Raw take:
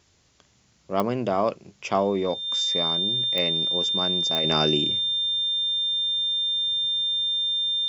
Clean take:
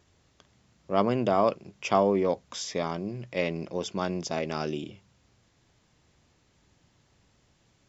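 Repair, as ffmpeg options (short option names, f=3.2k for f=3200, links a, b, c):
-af "adeclick=t=4,bandreject=f=3.6k:w=30,agate=range=-21dB:threshold=-54dB,asetnsamples=n=441:p=0,asendcmd='4.44 volume volume -8dB',volume=0dB"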